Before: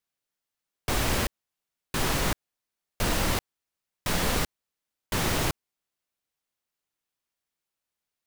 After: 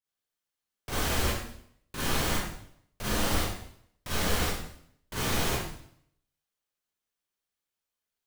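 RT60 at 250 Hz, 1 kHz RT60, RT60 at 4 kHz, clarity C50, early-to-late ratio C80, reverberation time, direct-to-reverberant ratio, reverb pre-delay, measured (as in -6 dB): 0.70 s, 0.60 s, 0.65 s, -2.5 dB, 2.0 dB, 0.65 s, -9.0 dB, 34 ms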